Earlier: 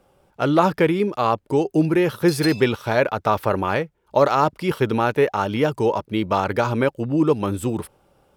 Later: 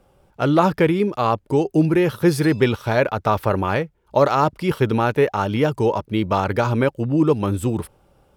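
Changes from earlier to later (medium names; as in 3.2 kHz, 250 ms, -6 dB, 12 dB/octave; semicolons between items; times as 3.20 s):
background -10.5 dB; master: add bass shelf 120 Hz +8.5 dB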